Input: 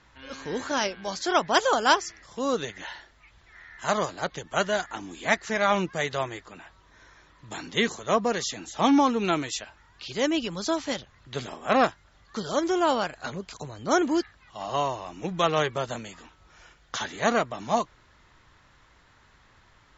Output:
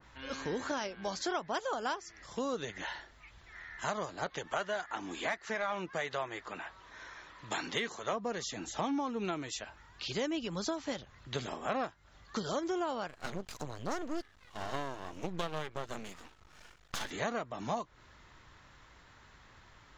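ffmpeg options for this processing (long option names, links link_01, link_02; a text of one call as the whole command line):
ffmpeg -i in.wav -filter_complex "[0:a]asettb=1/sr,asplit=3[link_01][link_02][link_03];[link_01]atrim=end=4.264[link_04];[link_02]atrim=start=4.26:end=8.13,asetpts=PTS-STARTPTS,afade=type=in:duration=0.004:curve=qsin,afade=type=out:start_time=3.866:duration=0.004:curve=qsin,asplit=2[link_05][link_06];[link_06]highpass=frequency=720:poles=1,volume=11dB,asoftclip=type=tanh:threshold=-6dB[link_07];[link_05][link_07]amix=inputs=2:normalize=0,lowpass=frequency=4200:poles=1,volume=-6dB[link_08];[link_03]atrim=start=8.126[link_09];[link_04][link_08]acrossfade=duration=0.004:curve1=hsin:curve2=qsin[link_10];[link_10][link_09]acrossfade=duration=0.004:curve1=qsin:curve2=hsin,asettb=1/sr,asplit=3[link_11][link_12][link_13];[link_11]atrim=end=13.084[link_14];[link_12]atrim=start=13.08:end=17.11,asetpts=PTS-STARTPTS,afade=type=in:duration=0.004:curve=qsin,afade=type=out:start_time=4.026:duration=0.004:curve=qsin,aeval=exprs='max(val(0),0)':channel_layout=same[link_15];[link_13]atrim=start=17.106[link_16];[link_14][link_15]acrossfade=duration=0.004:curve1=hsin:curve2=qsin[link_17];[link_17][link_16]acrossfade=duration=0.004:curve1=qsin:curve2=hsin,acompressor=threshold=-32dB:ratio=6,adynamicequalizer=threshold=0.00398:dfrequency=1900:dqfactor=0.7:tfrequency=1900:tqfactor=0.7:attack=5:release=100:ratio=0.375:range=2:mode=cutabove:tftype=highshelf" out.wav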